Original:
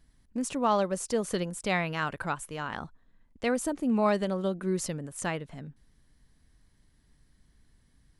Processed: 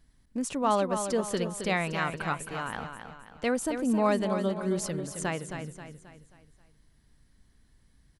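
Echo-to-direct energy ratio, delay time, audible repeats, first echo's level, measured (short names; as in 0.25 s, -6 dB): -7.0 dB, 0.267 s, 4, -8.0 dB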